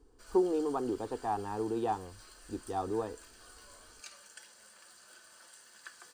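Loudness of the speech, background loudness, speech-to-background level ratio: -34.5 LUFS, -53.5 LUFS, 19.0 dB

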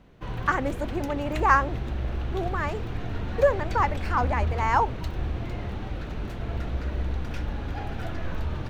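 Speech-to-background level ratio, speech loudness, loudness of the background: 6.0 dB, -26.5 LUFS, -32.5 LUFS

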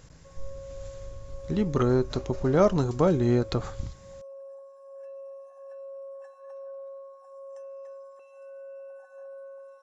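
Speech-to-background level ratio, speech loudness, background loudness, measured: 19.5 dB, -25.0 LUFS, -44.5 LUFS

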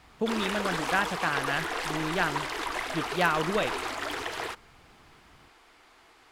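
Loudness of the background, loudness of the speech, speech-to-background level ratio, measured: -32.5 LUFS, -30.5 LUFS, 2.0 dB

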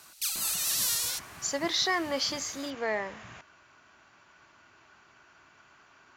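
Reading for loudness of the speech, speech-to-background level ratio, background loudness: -30.5 LUFS, -2.5 dB, -28.0 LUFS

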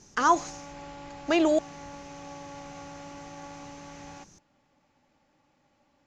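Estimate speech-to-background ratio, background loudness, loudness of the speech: 19.0 dB, -44.0 LUFS, -25.0 LUFS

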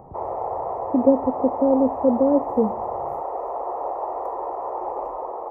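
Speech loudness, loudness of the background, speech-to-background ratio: -21.0 LUFS, -29.0 LUFS, 8.0 dB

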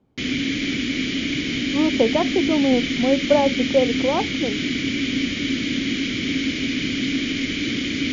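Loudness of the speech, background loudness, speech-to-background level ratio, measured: -21.5 LUFS, -23.0 LUFS, 1.5 dB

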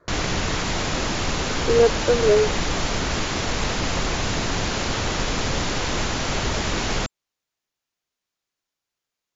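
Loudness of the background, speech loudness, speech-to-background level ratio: -24.5 LUFS, -20.5 LUFS, 4.0 dB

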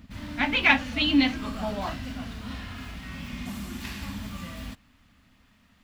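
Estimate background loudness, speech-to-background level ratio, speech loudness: -37.0 LUFS, 13.0 dB, -24.0 LUFS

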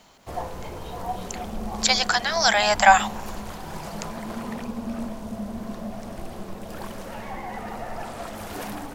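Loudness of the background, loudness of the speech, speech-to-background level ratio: -35.0 LUFS, -19.5 LUFS, 15.5 dB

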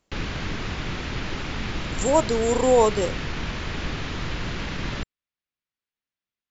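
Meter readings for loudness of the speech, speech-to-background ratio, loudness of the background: -21.5 LUFS, 9.5 dB, -31.0 LUFS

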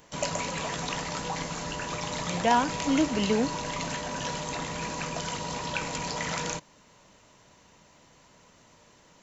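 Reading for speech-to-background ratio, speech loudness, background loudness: 5.5 dB, -27.0 LUFS, -32.5 LUFS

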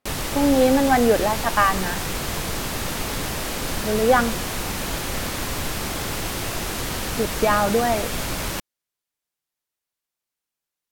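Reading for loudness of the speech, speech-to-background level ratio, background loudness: -20.5 LUFS, 6.0 dB, -26.5 LUFS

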